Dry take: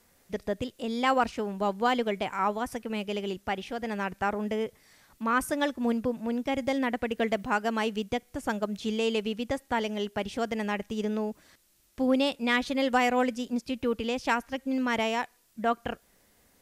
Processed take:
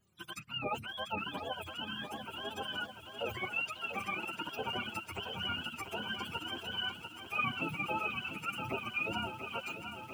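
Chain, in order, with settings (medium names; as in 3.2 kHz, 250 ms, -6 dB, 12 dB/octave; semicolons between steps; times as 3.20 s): spectrum inverted on a logarithmic axis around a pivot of 800 Hz; treble shelf 2.6 kHz +12 dB; flange 0.15 Hz, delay 4.8 ms, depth 9.4 ms, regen +16%; time stretch by phase-locked vocoder 0.61×; bit-crushed delay 693 ms, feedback 80%, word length 9-bit, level -9 dB; trim -7 dB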